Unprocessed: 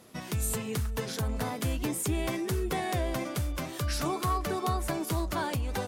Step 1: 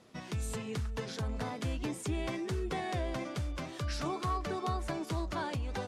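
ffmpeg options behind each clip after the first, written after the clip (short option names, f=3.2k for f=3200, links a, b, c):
-af "lowpass=6.3k,volume=-4.5dB"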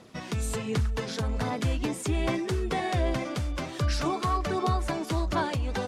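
-af "aphaser=in_gain=1:out_gain=1:delay=4.5:decay=0.29:speed=1.3:type=sinusoidal,volume=6.5dB"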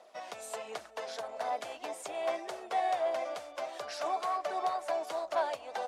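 -filter_complex "[0:a]acrossover=split=1300[a][b];[a]volume=25dB,asoftclip=hard,volume=-25dB[c];[c][b]amix=inputs=2:normalize=0,highpass=f=660:t=q:w=4.9,volume=-8.5dB"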